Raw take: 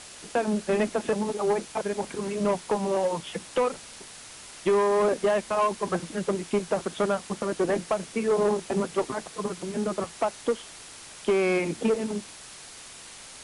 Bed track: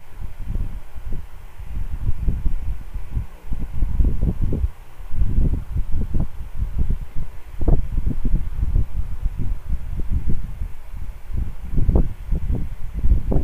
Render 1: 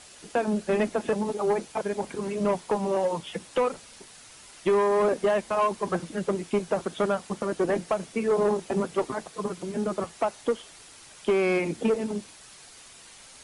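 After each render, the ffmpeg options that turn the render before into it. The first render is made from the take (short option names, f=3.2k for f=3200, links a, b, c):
-af "afftdn=nr=6:nf=-45"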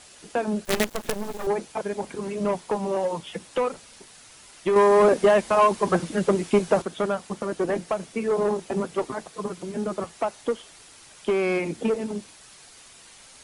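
-filter_complex "[0:a]asettb=1/sr,asplit=3[a][b][c];[a]atrim=end=0.654[d];[b]atrim=start=0.65:end=1.47,asetpts=PTS-STARTPTS,afade=t=in:d=0.004:c=qsin,afade=t=out:st=0.816:d=0.004:c=qsin,acrusher=bits=4:dc=4:mix=0:aa=0.000001[e];[c]atrim=start=1.466[f];[d][e]acrossfade=d=0.004:c1=hsin:c2=qsin[g];[g][f]acrossfade=d=0.004:c1=qsin:c2=hsin,asplit=3[h][i][j];[h]atrim=end=4.762[k];[i]atrim=start=4.758:end=6.822,asetpts=PTS-STARTPTS,volume=6dB[l];[j]atrim=start=6.818[m];[k][l]acrossfade=d=0.004:c1=hsin:c2=hsin[n];[n][m]acrossfade=d=0.004:c1=hsin:c2=hsin"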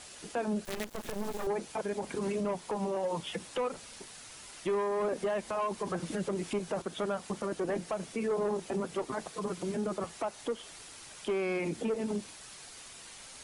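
-af "acompressor=threshold=-28dB:ratio=4,alimiter=level_in=1.5dB:limit=-24dB:level=0:latency=1:release=28,volume=-1.5dB"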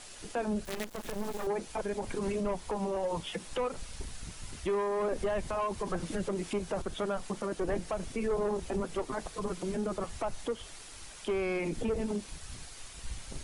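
-filter_complex "[1:a]volume=-25dB[a];[0:a][a]amix=inputs=2:normalize=0"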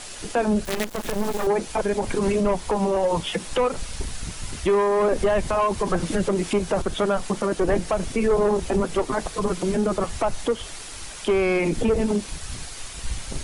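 -af "volume=11dB"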